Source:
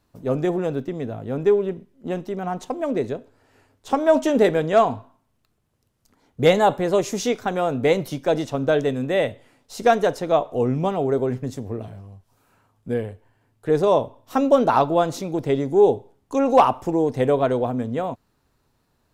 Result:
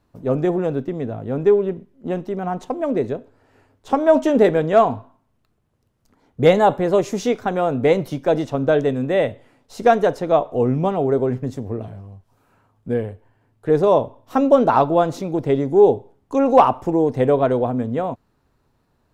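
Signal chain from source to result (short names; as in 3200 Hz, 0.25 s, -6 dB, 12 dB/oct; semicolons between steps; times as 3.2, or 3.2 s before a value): high shelf 2700 Hz -8.5 dB; gain +3 dB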